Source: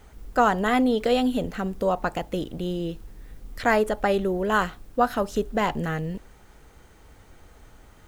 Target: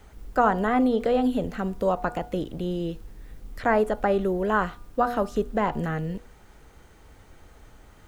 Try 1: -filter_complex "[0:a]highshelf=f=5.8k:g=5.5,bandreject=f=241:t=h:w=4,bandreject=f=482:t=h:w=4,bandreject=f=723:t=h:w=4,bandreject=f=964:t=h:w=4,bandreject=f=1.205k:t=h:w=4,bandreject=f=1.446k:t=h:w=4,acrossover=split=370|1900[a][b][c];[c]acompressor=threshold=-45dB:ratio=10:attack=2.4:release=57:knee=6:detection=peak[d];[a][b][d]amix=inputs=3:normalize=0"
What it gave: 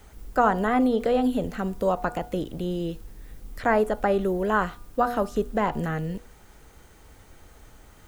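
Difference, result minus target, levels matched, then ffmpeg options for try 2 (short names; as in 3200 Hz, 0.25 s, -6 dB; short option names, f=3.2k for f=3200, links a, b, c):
8000 Hz band +3.0 dB
-filter_complex "[0:a]highshelf=f=5.8k:g=-2,bandreject=f=241:t=h:w=4,bandreject=f=482:t=h:w=4,bandreject=f=723:t=h:w=4,bandreject=f=964:t=h:w=4,bandreject=f=1.205k:t=h:w=4,bandreject=f=1.446k:t=h:w=4,acrossover=split=370|1900[a][b][c];[c]acompressor=threshold=-45dB:ratio=10:attack=2.4:release=57:knee=6:detection=peak[d];[a][b][d]amix=inputs=3:normalize=0"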